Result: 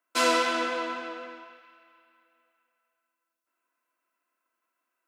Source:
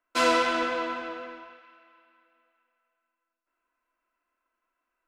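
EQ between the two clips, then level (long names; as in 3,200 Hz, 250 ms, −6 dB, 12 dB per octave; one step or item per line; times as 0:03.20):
high-pass filter 170 Hz 24 dB per octave
high-shelf EQ 5,600 Hz +9 dB
−1.5 dB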